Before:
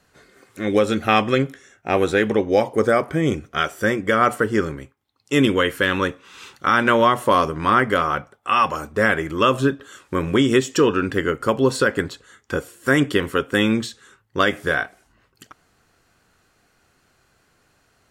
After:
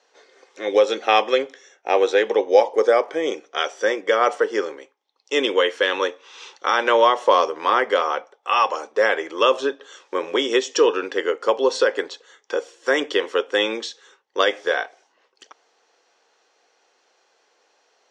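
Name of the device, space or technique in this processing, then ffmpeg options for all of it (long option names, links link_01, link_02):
phone speaker on a table: -af "highpass=frequency=380:width=0.5412,highpass=frequency=380:width=1.3066,equalizer=frequency=490:width_type=q:width=4:gain=6,equalizer=frequency=850:width_type=q:width=4:gain=6,equalizer=frequency=1400:width_type=q:width=4:gain=-5,equalizer=frequency=3400:width_type=q:width=4:gain=4,equalizer=frequency=5800:width_type=q:width=4:gain=7,lowpass=frequency=6500:width=0.5412,lowpass=frequency=6500:width=1.3066,volume=-1dB"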